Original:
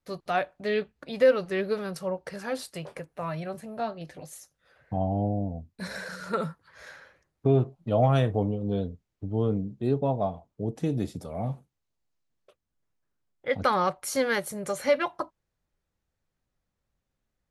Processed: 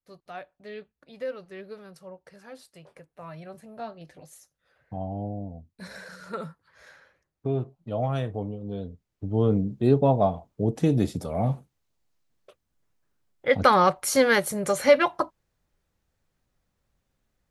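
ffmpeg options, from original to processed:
-af "volume=2,afade=t=in:st=2.76:d=1.08:silence=0.421697,afade=t=in:st=8.79:d=0.92:silence=0.266073"

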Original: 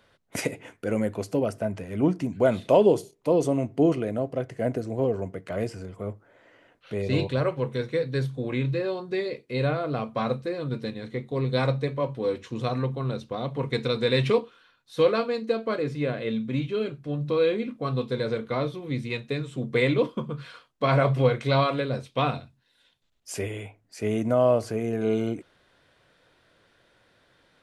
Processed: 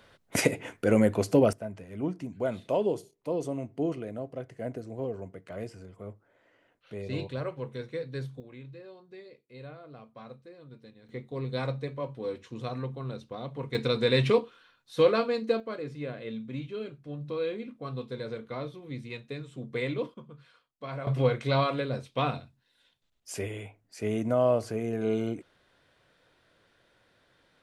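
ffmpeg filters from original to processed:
-af "asetnsamples=n=441:p=0,asendcmd='1.53 volume volume -9dB;8.4 volume volume -19.5dB;11.09 volume volume -7.5dB;13.75 volume volume -1dB;15.6 volume volume -9dB;20.14 volume volume -16dB;21.07 volume volume -3.5dB',volume=1.58"

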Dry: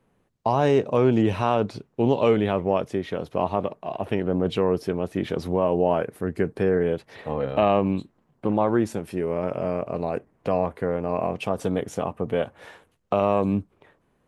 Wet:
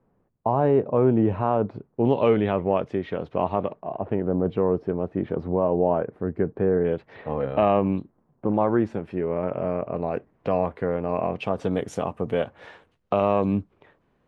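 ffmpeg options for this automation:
-af "asetnsamples=n=441:p=0,asendcmd='2.05 lowpass f 2800;3.8 lowpass f 1200;6.85 lowpass f 2400;7.99 lowpass f 1200;8.54 lowpass f 2200;10.11 lowpass f 3800;11.72 lowpass f 8700;12.43 lowpass f 4600',lowpass=1200"

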